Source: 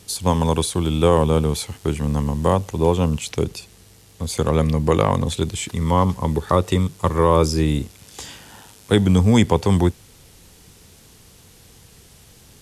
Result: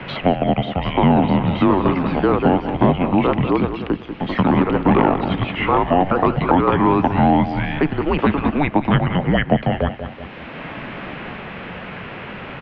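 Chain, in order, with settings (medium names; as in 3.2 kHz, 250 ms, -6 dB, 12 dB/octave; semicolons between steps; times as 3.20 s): ever faster or slower copies 754 ms, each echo +3 st, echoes 2; on a send: feedback delay 189 ms, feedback 32%, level -13 dB; on the sum: mistuned SSB -280 Hz 420–3000 Hz; three bands compressed up and down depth 70%; trim +5 dB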